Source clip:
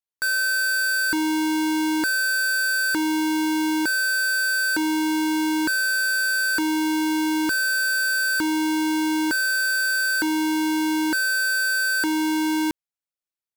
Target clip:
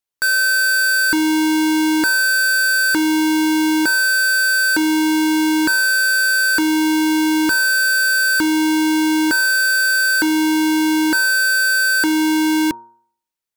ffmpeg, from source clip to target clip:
-af "bandreject=f=116.7:t=h:w=4,bandreject=f=233.4:t=h:w=4,bandreject=f=350.1:t=h:w=4,bandreject=f=466.8:t=h:w=4,bandreject=f=583.5:t=h:w=4,bandreject=f=700.2:t=h:w=4,bandreject=f=816.9:t=h:w=4,bandreject=f=933.6:t=h:w=4,bandreject=f=1.0503k:t=h:w=4,bandreject=f=1.167k:t=h:w=4,bandreject=f=1.2837k:t=h:w=4,bandreject=f=1.4004k:t=h:w=4,bandreject=f=1.5171k:t=h:w=4,volume=6.5dB"

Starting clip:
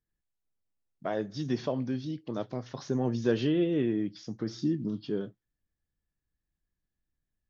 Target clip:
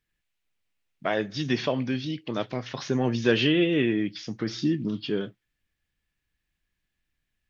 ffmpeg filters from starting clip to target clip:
-af "equalizer=f=2.5k:w=0.9:g=13.5,volume=3.5dB"

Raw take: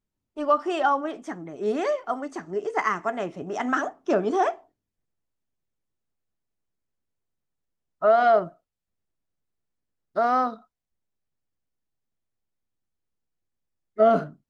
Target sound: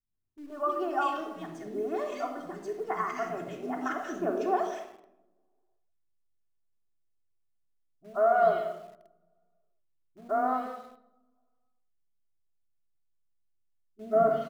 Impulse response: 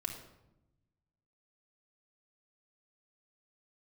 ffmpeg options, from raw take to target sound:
-filter_complex "[0:a]asettb=1/sr,asplit=3[a][b][c];[a]atrim=end=8.184[d];[b]atrim=start=8.18:end=10.51,asetpts=PTS-STARTPTS,afade=t=in:d=0.004:c=qsin,afade=t=out:st=2.326:d=0.004:c=qsin,lowpass=f=3.5k:w=0.5412,lowpass=f=3.5k:w=1.3066[e];[c]atrim=start=10.506[f];[d][e]acrossfade=d=0.004:c1=hsin:c2=qsin[g];[g][f]acrossfade=d=0.004:c1=qsin:c2=hsin,acrossover=split=280|2000[h][i][j];[i]adelay=130[k];[j]adelay=310[l];[h][k][l]amix=inputs=3:normalize=0[m];[1:a]atrim=start_sample=2205[n];[m][n]afir=irnorm=-1:irlink=0,asplit=2[o][p];[p]acrusher=bits=6:mix=0:aa=0.000001,volume=-12dB[q];[o][q]amix=inputs=2:normalize=0,volume=-8dB"

